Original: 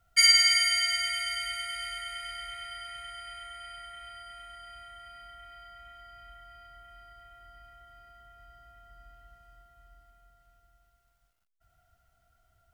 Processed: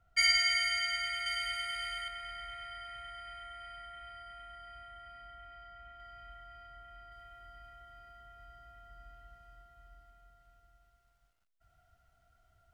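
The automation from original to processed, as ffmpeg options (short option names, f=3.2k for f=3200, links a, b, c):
-af "asetnsamples=n=441:p=0,asendcmd='1.26 lowpass f 3900;2.08 lowpass f 1500;6 lowpass f 2800;7.12 lowpass f 5700',lowpass=f=1.8k:p=1"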